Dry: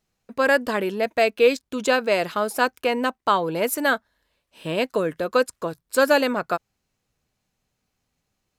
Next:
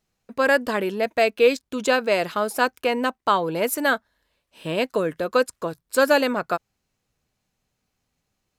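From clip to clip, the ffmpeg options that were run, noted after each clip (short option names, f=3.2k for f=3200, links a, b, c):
-af anull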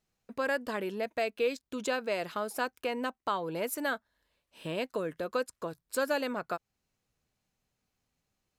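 -af "acompressor=threshold=-33dB:ratio=1.5,volume=-5.5dB"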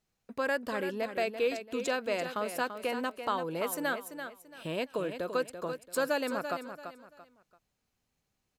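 -af "aecho=1:1:338|676|1014:0.355|0.103|0.0298"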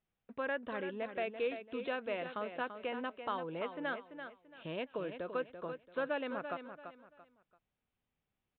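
-af "aresample=8000,aresample=44100,volume=-6dB"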